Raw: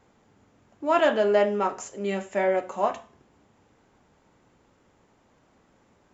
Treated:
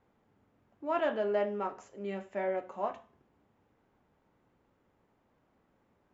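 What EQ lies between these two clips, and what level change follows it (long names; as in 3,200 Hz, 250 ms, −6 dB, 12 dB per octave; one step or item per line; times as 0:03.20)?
low-pass filter 3,000 Hz 6 dB per octave
high-frequency loss of the air 60 metres
−9.0 dB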